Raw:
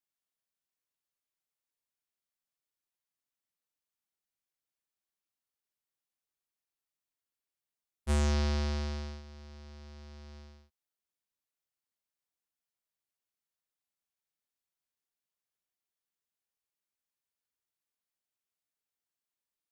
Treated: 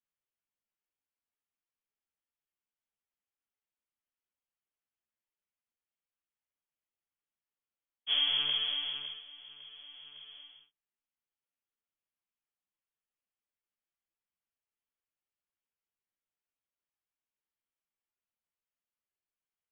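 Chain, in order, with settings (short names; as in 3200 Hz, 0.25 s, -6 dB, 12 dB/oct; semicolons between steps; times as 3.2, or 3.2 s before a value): inverted band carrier 3300 Hz; ensemble effect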